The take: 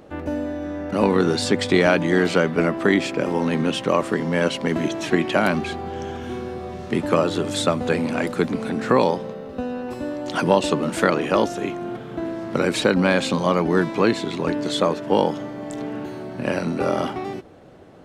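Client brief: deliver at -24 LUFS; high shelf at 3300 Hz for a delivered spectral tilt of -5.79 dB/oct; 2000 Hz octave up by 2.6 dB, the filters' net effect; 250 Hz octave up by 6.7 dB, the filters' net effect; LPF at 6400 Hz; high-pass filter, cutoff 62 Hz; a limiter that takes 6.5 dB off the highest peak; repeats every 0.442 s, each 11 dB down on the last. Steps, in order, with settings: HPF 62 Hz; LPF 6400 Hz; bell 250 Hz +8.5 dB; bell 2000 Hz +6 dB; high shelf 3300 Hz -9 dB; limiter -6.5 dBFS; feedback echo 0.442 s, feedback 28%, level -11 dB; gain -5 dB

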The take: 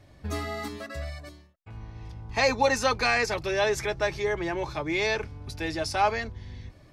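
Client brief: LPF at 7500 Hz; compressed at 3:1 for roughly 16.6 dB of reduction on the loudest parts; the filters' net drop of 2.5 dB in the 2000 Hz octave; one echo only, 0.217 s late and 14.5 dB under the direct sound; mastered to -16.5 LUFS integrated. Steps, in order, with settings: LPF 7500 Hz; bell 2000 Hz -3 dB; compressor 3:1, threshold -42 dBFS; echo 0.217 s -14.5 dB; gain +25.5 dB

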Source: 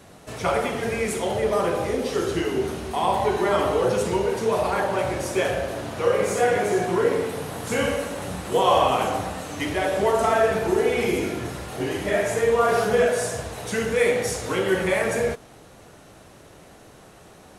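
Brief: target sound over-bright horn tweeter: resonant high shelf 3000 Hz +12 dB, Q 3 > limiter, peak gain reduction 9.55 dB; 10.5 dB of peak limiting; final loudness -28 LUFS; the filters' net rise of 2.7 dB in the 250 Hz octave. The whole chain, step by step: bell 250 Hz +4 dB; limiter -17 dBFS; resonant high shelf 3000 Hz +12 dB, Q 3; gain -3.5 dB; limiter -19 dBFS

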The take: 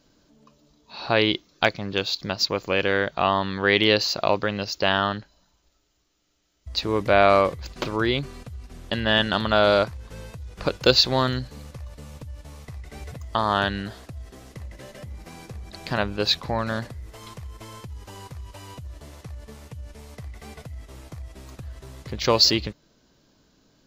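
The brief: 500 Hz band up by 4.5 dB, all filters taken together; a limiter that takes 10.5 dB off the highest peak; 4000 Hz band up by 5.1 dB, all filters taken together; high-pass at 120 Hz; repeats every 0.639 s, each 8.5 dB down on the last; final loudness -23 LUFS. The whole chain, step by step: HPF 120 Hz; bell 500 Hz +5.5 dB; bell 4000 Hz +6 dB; limiter -6.5 dBFS; feedback echo 0.639 s, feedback 38%, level -8.5 dB; gain -1 dB

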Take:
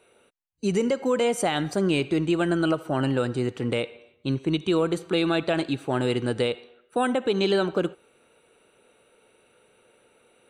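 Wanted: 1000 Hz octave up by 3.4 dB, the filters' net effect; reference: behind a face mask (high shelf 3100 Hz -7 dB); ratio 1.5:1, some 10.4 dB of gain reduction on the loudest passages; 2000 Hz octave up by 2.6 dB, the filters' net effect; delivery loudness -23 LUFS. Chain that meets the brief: bell 1000 Hz +4.5 dB; bell 2000 Hz +4.5 dB; compressor 1.5:1, threshold -48 dBFS; high shelf 3100 Hz -7 dB; gain +12 dB

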